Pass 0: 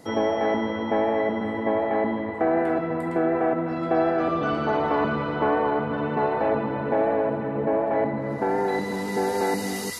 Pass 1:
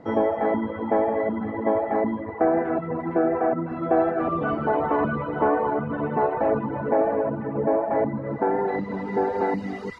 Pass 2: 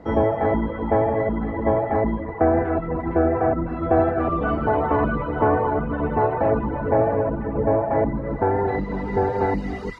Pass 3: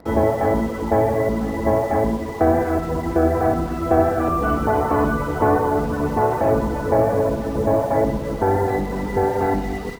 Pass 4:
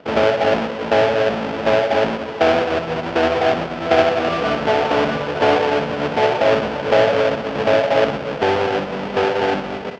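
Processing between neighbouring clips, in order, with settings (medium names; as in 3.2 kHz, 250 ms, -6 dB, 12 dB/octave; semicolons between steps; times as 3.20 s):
reverb removal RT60 0.94 s; low-pass 1.6 kHz 12 dB/octave; trim +3 dB
octave divider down 2 oct, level +1 dB; bass shelf 64 Hz -6 dB; trim +2 dB
in parallel at -4.5 dB: bit crusher 6-bit; on the sum: feedback delay 62 ms, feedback 59%, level -9.5 dB; trim -3 dB
square wave that keeps the level; cabinet simulation 210–4100 Hz, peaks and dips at 220 Hz -4 dB, 320 Hz -8 dB, 600 Hz +4 dB, 1.1 kHz -4 dB, 2 kHz -4 dB, 3.9 kHz -7 dB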